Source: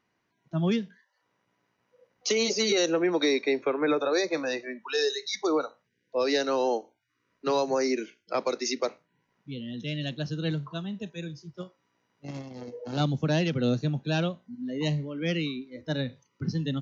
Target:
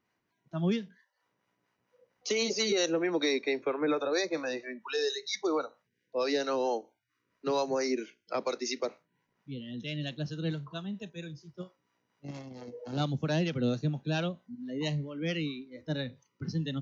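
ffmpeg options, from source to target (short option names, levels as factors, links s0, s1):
-filter_complex "[0:a]acrossover=split=520[s0][s1];[s0]aeval=exprs='val(0)*(1-0.5/2+0.5/2*cos(2*PI*4.4*n/s))':c=same[s2];[s1]aeval=exprs='val(0)*(1-0.5/2-0.5/2*cos(2*PI*4.4*n/s))':c=same[s3];[s2][s3]amix=inputs=2:normalize=0,volume=0.841"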